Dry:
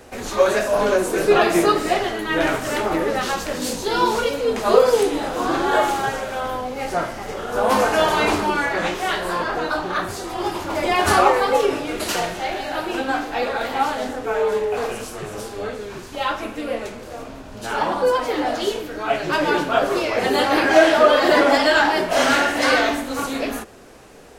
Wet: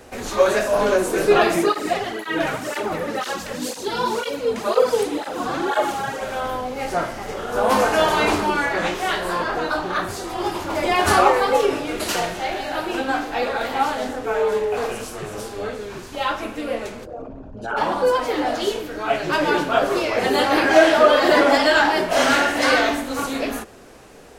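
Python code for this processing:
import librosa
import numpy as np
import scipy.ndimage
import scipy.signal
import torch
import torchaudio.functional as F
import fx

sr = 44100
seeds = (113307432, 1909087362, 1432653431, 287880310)

y = fx.flanger_cancel(x, sr, hz=2.0, depth_ms=3.4, at=(1.54, 6.2), fade=0.02)
y = fx.envelope_sharpen(y, sr, power=2.0, at=(17.04, 17.76), fade=0.02)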